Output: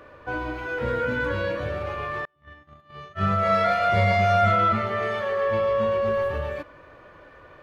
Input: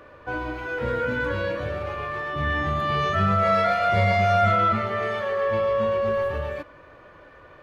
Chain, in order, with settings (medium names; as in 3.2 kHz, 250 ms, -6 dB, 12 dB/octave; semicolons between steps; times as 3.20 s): 2.25–3.61 s: gate -20 dBFS, range -39 dB